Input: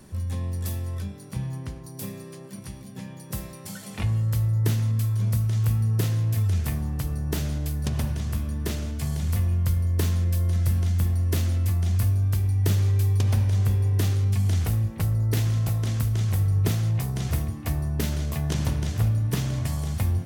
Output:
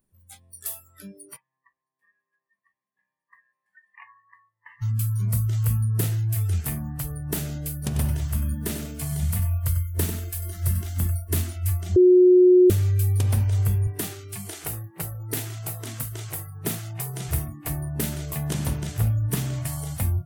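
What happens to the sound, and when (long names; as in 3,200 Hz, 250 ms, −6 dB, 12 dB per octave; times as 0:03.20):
0:01.36–0:04.82: pair of resonant band-passes 1,400 Hz, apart 0.72 octaves
0:07.77–0:11.29: feedback echo at a low word length 95 ms, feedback 35%, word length 9 bits, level −8.5 dB
0:11.96–0:12.70: beep over 363 Hz −10.5 dBFS
0:13.87–0:17.28: high-pass filter 160 Hz 6 dB per octave
whole clip: noise reduction from a noise print of the clip's start 29 dB; high shelf with overshoot 7,400 Hz +6.5 dB, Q 1.5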